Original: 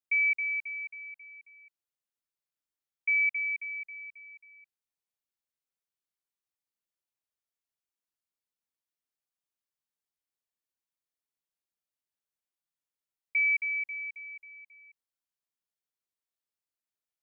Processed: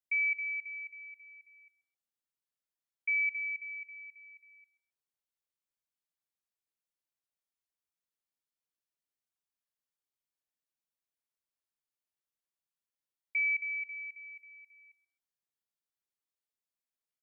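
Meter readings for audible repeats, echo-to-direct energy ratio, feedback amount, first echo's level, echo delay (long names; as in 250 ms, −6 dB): 2, −18.5 dB, 20%, −18.5 dB, 131 ms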